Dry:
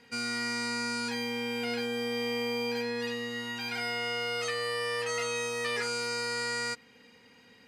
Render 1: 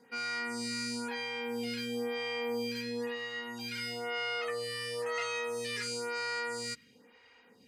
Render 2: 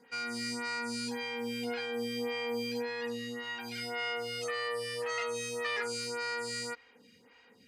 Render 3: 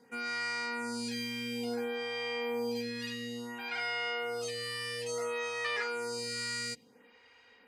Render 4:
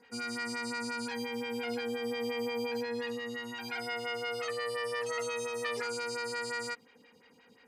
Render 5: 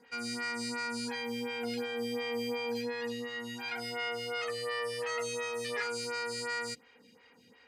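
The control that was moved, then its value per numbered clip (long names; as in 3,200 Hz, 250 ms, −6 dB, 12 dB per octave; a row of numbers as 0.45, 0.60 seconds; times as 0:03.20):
phaser with staggered stages, speed: 1, 1.8, 0.58, 5.7, 2.8 Hertz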